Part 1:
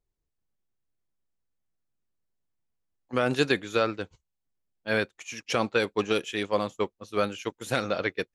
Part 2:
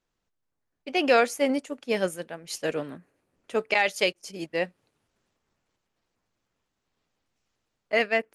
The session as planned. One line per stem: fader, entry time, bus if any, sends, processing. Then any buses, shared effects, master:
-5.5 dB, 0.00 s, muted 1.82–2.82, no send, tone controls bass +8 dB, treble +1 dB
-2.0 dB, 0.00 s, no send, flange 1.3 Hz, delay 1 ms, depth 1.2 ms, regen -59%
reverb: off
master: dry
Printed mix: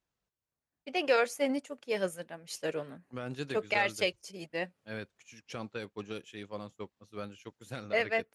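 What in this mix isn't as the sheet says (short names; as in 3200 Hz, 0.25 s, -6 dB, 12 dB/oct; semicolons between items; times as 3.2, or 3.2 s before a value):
stem 1 -5.5 dB -> -16.0 dB; master: extra HPF 48 Hz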